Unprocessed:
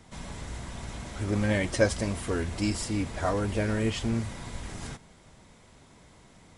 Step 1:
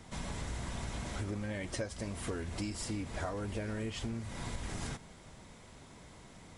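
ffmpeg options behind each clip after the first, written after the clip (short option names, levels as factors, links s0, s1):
-af "acompressor=threshold=0.0178:ratio=20,volume=1.12"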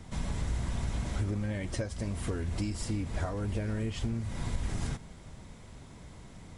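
-af "lowshelf=f=200:g=9.5"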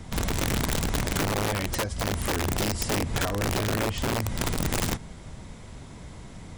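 -af "aeval=exprs='(mod(22.4*val(0)+1,2)-1)/22.4':c=same,volume=2.11"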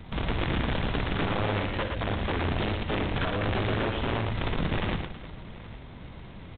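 -af "aresample=8000,acrusher=bits=3:mode=log:mix=0:aa=0.000001,aresample=44100,aecho=1:1:60|115|323|822:0.266|0.562|0.188|0.106,volume=0.75"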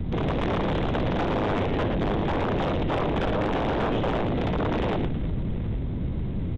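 -filter_complex "[0:a]aeval=exprs='(tanh(12.6*val(0)+0.3)-tanh(0.3))/12.6':c=same,acrossover=split=450[s0][s1];[s0]aeval=exprs='0.0794*sin(PI/2*5.01*val(0)/0.0794)':c=same[s2];[s2][s1]amix=inputs=2:normalize=0"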